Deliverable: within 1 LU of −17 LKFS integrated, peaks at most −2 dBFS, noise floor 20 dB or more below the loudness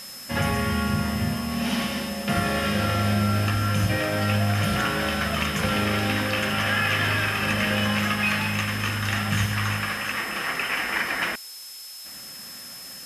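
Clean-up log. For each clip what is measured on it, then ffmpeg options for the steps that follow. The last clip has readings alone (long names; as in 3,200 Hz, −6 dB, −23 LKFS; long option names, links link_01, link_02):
interfering tone 5,200 Hz; level of the tone −40 dBFS; background noise floor −40 dBFS; target noise floor −44 dBFS; integrated loudness −24.0 LKFS; sample peak −10.5 dBFS; target loudness −17.0 LKFS
→ -af "bandreject=frequency=5200:width=30"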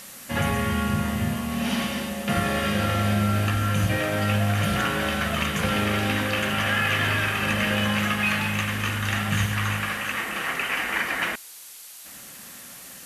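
interfering tone none found; background noise floor −43 dBFS; target noise floor −44 dBFS
→ -af "afftdn=noise_reduction=6:noise_floor=-43"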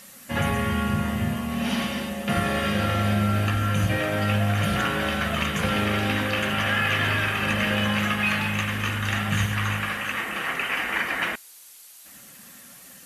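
background noise floor −47 dBFS; integrated loudness −24.5 LKFS; sample peak −11.0 dBFS; target loudness −17.0 LKFS
→ -af "volume=7.5dB"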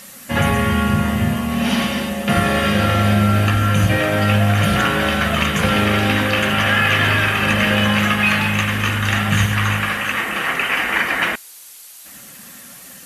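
integrated loudness −17.0 LKFS; sample peak −3.5 dBFS; background noise floor −40 dBFS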